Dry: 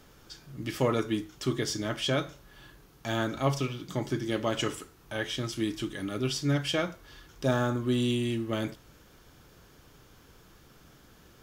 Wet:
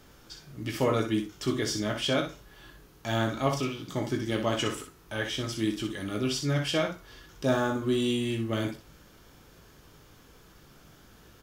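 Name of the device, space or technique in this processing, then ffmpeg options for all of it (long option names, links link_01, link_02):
slapback doubling: -filter_complex "[0:a]asplit=3[link_01][link_02][link_03];[link_02]adelay=19,volume=-7dB[link_04];[link_03]adelay=62,volume=-7dB[link_05];[link_01][link_04][link_05]amix=inputs=3:normalize=0"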